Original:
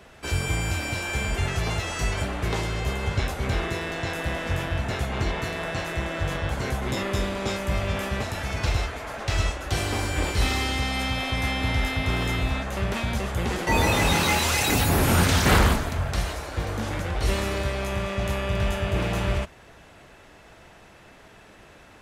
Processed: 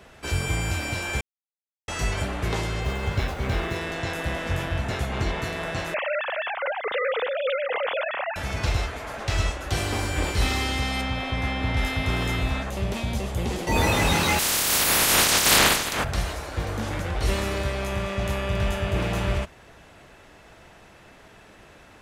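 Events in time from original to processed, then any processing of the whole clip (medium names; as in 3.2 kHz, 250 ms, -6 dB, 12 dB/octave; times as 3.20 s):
1.21–1.88 s: mute
2.81–3.76 s: median filter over 5 samples
5.94–8.36 s: formants replaced by sine waves
11.01–11.77 s: low-pass 2.7 kHz 6 dB/octave
12.70–13.76 s: peaking EQ 1.5 kHz -8.5 dB 1.1 oct
14.38–16.03 s: spectral peaks clipped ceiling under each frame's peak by 29 dB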